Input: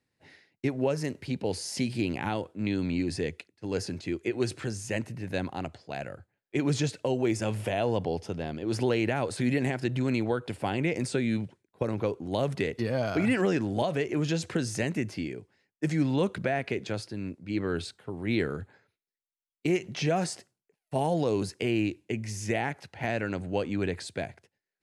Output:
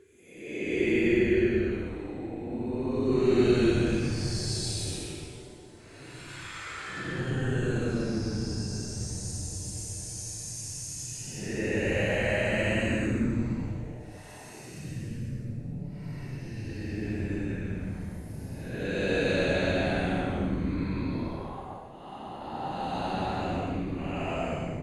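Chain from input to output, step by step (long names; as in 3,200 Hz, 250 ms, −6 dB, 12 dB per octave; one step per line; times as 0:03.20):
extreme stretch with random phases 17×, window 0.05 s, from 0:04.22
echo with shifted repeats 125 ms, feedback 64%, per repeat −140 Hz, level −10.5 dB
level +1.5 dB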